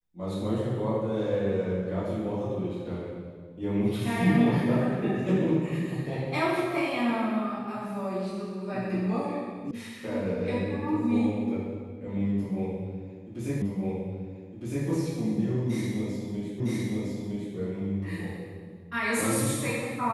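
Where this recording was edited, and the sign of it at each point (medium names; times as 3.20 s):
9.71 s: sound stops dead
13.62 s: repeat of the last 1.26 s
16.60 s: repeat of the last 0.96 s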